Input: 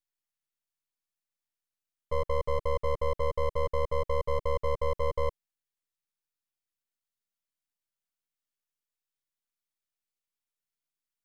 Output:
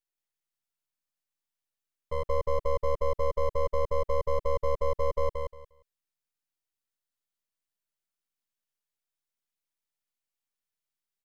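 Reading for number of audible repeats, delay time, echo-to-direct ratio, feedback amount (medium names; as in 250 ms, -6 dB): 3, 177 ms, -3.5 dB, 19%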